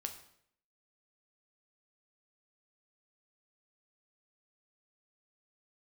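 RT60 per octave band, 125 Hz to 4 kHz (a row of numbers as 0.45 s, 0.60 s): 0.70 s, 0.75 s, 0.70 s, 0.65 s, 0.65 s, 0.60 s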